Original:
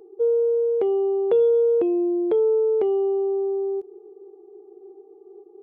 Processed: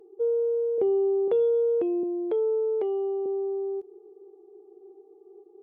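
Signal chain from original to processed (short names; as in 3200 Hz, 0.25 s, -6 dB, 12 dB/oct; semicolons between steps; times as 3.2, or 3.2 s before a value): 0.78–1.28 tilt shelf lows +7 dB, about 660 Hz; 2.03–3.26 HPF 300 Hz 12 dB/oct; gain -5 dB; Vorbis 96 kbps 48000 Hz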